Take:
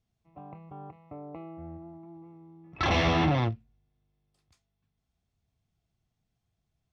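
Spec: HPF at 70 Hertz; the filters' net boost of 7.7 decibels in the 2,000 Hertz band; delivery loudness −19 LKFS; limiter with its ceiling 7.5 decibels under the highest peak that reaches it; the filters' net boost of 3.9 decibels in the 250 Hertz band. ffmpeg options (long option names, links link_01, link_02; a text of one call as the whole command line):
ffmpeg -i in.wav -af "highpass=70,equalizer=frequency=250:width_type=o:gain=5.5,equalizer=frequency=2000:width_type=o:gain=9,volume=10.5dB,alimiter=limit=-6dB:level=0:latency=1" out.wav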